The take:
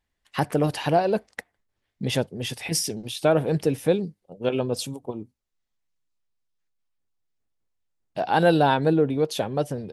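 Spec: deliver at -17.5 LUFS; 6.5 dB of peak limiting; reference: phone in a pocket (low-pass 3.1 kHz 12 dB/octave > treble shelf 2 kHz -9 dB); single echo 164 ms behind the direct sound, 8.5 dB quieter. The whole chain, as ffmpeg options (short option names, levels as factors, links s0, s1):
-af "alimiter=limit=0.2:level=0:latency=1,lowpass=3100,highshelf=f=2000:g=-9,aecho=1:1:164:0.376,volume=2.99"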